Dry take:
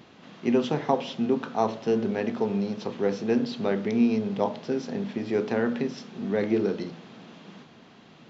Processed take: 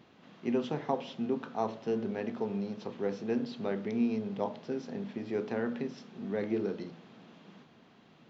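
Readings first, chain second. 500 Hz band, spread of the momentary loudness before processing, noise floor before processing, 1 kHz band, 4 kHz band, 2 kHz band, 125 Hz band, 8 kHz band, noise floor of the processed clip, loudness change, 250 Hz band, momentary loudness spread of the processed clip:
-7.5 dB, 8 LU, -52 dBFS, -7.5 dB, -9.5 dB, -8.0 dB, -7.5 dB, n/a, -60 dBFS, -7.5 dB, -7.5 dB, 8 LU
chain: high shelf 4400 Hz -5 dB; gain -7.5 dB

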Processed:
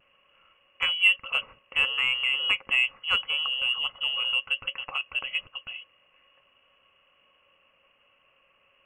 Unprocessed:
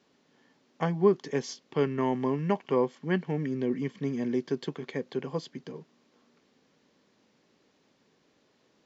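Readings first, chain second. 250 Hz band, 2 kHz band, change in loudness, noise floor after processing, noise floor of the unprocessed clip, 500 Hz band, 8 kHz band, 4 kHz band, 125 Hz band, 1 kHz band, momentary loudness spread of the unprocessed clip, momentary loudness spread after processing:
under -25 dB, +17.5 dB, +5.5 dB, -66 dBFS, -69 dBFS, -20.5 dB, n/a, +23.5 dB, under -20 dB, -3.0 dB, 11 LU, 11 LU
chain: inverted band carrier 3100 Hz; vibrato 0.33 Hz 12 cents; in parallel at -12 dB: soft clip -22.5 dBFS, distortion -11 dB; on the sum: small resonant body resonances 550/1100 Hz, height 17 dB, ringing for 55 ms

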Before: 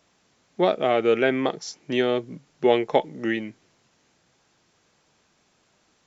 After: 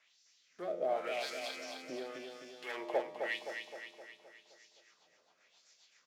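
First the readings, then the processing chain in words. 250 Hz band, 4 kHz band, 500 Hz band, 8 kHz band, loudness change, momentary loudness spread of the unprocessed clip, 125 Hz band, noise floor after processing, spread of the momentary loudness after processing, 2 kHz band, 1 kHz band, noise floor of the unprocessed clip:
-23.0 dB, -11.0 dB, -16.0 dB, n/a, -16.0 dB, 9 LU, under -25 dB, -72 dBFS, 19 LU, -11.0 dB, -14.0 dB, -66 dBFS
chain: block floating point 5-bit; bell 2000 Hz +3 dB 0.27 oct; compressor 1.5:1, threshold -37 dBFS, peak gain reduction 9 dB; soft clip -24 dBFS, distortion -12 dB; resonator 87 Hz, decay 1.7 s, harmonics all, mix 80%; LFO band-pass sine 0.92 Hz 570–5400 Hz; rotary speaker horn 0.6 Hz, later 7.5 Hz, at 2.84; high shelf 3100 Hz +8.5 dB; feedback echo 0.26 s, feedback 54%, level -6 dB; gain +14.5 dB

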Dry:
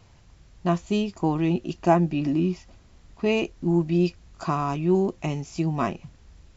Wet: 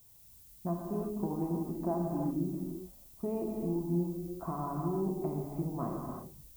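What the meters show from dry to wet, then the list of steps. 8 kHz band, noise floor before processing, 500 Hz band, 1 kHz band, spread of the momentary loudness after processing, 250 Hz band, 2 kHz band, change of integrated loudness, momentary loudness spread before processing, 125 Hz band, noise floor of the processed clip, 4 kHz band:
n/a, -54 dBFS, -10.5 dB, -12.0 dB, 10 LU, -9.5 dB, under -25 dB, -10.5 dB, 8 LU, -10.0 dB, -57 dBFS, under -25 dB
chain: gate -46 dBFS, range -11 dB; LPF 1100 Hz 24 dB/oct; compressor 3:1, threshold -29 dBFS, peak gain reduction 11.5 dB; added noise violet -54 dBFS; non-linear reverb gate 0.39 s flat, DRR -1 dB; gain -6.5 dB

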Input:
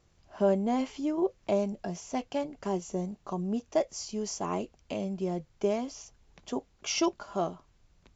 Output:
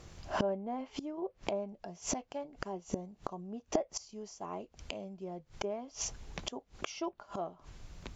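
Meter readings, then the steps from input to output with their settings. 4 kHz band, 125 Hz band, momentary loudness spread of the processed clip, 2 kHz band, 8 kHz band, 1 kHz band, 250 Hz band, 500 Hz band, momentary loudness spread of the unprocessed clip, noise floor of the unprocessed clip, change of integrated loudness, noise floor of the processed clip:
-4.5 dB, -8.5 dB, 9 LU, -2.5 dB, n/a, -5.5 dB, -9.5 dB, -8.0 dB, 9 LU, -66 dBFS, -7.5 dB, -70 dBFS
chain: treble ducked by the level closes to 2700 Hz, closed at -24 dBFS; dynamic EQ 740 Hz, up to +6 dB, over -41 dBFS, Q 0.88; flipped gate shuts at -33 dBFS, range -27 dB; gain +14 dB

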